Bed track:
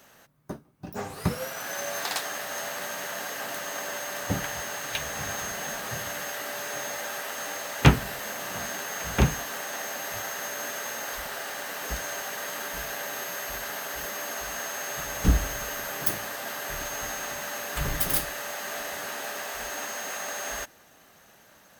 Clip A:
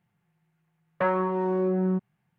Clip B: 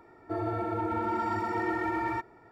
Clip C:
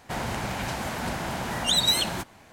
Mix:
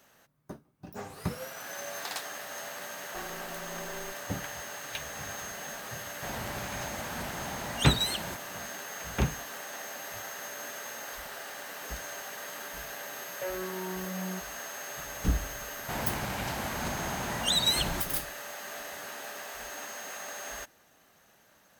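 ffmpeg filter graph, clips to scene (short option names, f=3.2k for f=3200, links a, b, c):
-filter_complex "[1:a]asplit=2[a][b];[3:a]asplit=2[c][d];[0:a]volume=-6.5dB[e];[a]aeval=exprs='val(0)*sgn(sin(2*PI*200*n/s))':c=same[f];[b]asplit=2[g][h];[h]afreqshift=-0.89[i];[g][i]amix=inputs=2:normalize=1[j];[f]atrim=end=2.38,asetpts=PTS-STARTPTS,volume=-18dB,afade=t=in:d=0.004:c=hsin,afade=t=out:st=2.376:d=0.004:c=hsin,adelay=2140[k];[c]atrim=end=2.52,asetpts=PTS-STARTPTS,volume=-8dB,afade=t=in:d=0.004:c=hsin,afade=t=out:st=2.516:d=0.004:c=hsin,adelay=6130[l];[j]atrim=end=2.38,asetpts=PTS-STARTPTS,volume=-8.5dB,afade=t=in:d=0.004:c=hsin,afade=t=out:st=2.376:d=0.004:c=hsin,adelay=12410[m];[d]atrim=end=2.52,asetpts=PTS-STARTPTS,volume=-4dB,afade=t=in:d=0.004:c=hsin,afade=t=out:st=2.516:d=0.004:c=hsin,adelay=15790[n];[e][k][l][m][n]amix=inputs=5:normalize=0"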